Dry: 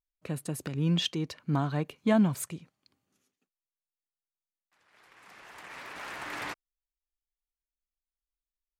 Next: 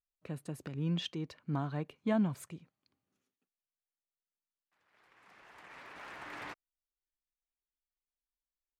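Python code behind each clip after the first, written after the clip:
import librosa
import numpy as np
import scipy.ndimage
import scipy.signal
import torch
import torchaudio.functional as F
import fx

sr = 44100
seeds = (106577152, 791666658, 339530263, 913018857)

y = fx.high_shelf(x, sr, hz=4900.0, db=-9.5)
y = y * librosa.db_to_amplitude(-6.5)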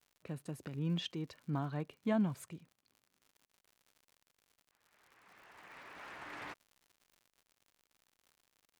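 y = fx.dmg_crackle(x, sr, seeds[0], per_s=110.0, level_db=-51.0)
y = y * librosa.db_to_amplitude(-2.0)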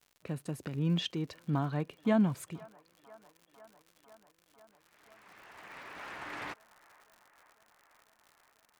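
y = fx.echo_wet_bandpass(x, sr, ms=498, feedback_pct=77, hz=1000.0, wet_db=-20.0)
y = y * librosa.db_to_amplitude(5.5)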